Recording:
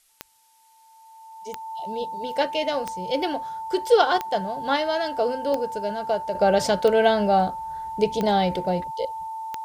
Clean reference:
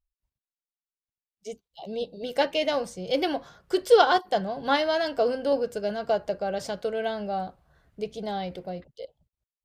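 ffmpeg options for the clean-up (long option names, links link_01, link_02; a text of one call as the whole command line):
ffmpeg -i in.wav -af "adeclick=threshold=4,bandreject=frequency=890:width=30,agate=range=-21dB:threshold=-43dB,asetnsamples=nb_out_samples=441:pad=0,asendcmd='6.35 volume volume -10.5dB',volume=0dB" out.wav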